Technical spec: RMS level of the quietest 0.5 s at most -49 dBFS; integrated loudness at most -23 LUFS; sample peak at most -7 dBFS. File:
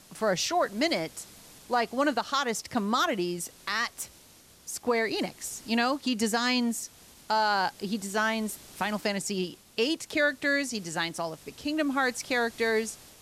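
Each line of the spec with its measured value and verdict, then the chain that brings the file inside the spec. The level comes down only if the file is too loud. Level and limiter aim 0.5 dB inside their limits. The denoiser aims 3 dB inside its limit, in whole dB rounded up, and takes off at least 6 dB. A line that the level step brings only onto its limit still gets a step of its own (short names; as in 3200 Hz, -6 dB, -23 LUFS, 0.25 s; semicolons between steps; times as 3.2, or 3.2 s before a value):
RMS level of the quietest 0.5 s -55 dBFS: OK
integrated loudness -29.0 LUFS: OK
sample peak -15.0 dBFS: OK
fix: none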